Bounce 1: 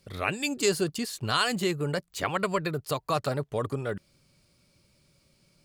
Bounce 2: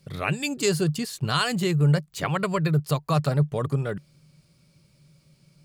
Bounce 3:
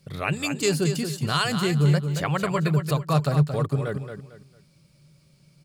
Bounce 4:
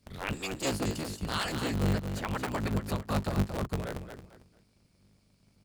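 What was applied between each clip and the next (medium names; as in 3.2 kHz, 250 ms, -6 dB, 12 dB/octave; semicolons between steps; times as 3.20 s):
peaking EQ 150 Hz +14.5 dB 0.39 oct; trim +1 dB
feedback delay 225 ms, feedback 29%, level -8 dB
cycle switcher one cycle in 3, inverted; trim -8.5 dB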